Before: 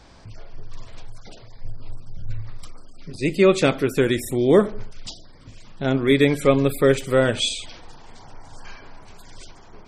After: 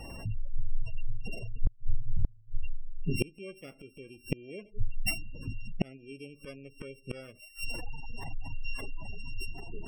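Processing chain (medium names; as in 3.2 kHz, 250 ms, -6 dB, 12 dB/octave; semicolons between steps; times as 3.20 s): sorted samples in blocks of 16 samples; spectral gate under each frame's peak -20 dB strong; inverted gate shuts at -21 dBFS, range -35 dB; trim +6.5 dB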